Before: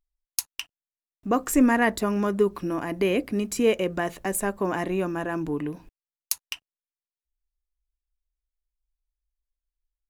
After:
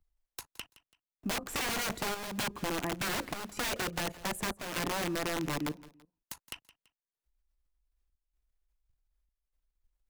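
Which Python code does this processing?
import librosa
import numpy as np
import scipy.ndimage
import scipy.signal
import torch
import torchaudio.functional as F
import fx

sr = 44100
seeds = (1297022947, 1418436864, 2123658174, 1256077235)

p1 = fx.high_shelf(x, sr, hz=2100.0, db=-8.5)
p2 = (np.mod(10.0 ** (23.5 / 20.0) * p1 + 1.0, 2.0) - 1.0) / 10.0 ** (23.5 / 20.0)
p3 = fx.level_steps(p2, sr, step_db=11)
p4 = fx.chopper(p3, sr, hz=0.84, depth_pct=60, duty_pct=80)
p5 = p4 + fx.echo_feedback(p4, sr, ms=167, feedback_pct=29, wet_db=-20.5, dry=0)
y = fx.band_squash(p5, sr, depth_pct=40)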